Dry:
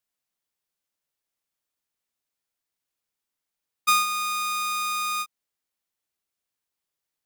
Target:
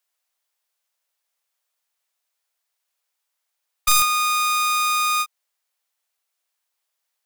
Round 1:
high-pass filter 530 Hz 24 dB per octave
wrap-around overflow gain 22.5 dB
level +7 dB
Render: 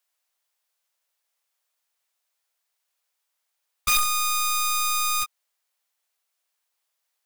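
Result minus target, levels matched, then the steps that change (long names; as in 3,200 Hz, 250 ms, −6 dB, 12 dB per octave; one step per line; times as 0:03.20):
wrap-around overflow: distortion +13 dB
change: wrap-around overflow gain 13.5 dB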